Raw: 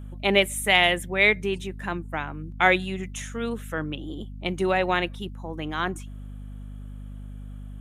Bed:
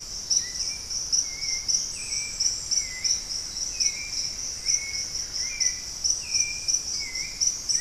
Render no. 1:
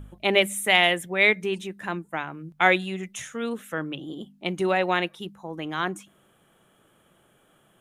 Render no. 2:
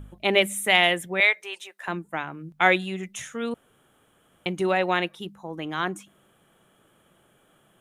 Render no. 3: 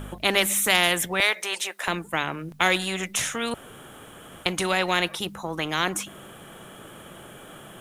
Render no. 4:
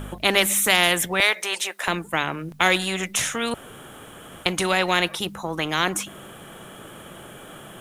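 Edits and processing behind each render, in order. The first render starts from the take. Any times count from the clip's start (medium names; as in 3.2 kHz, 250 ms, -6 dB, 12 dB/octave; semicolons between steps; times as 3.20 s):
de-hum 50 Hz, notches 5
1.20–1.88 s: high-pass 590 Hz 24 dB/octave; 3.54–4.46 s: room tone
spectrum-flattening compressor 2:1
trim +2.5 dB; peak limiter -3 dBFS, peak gain reduction 2 dB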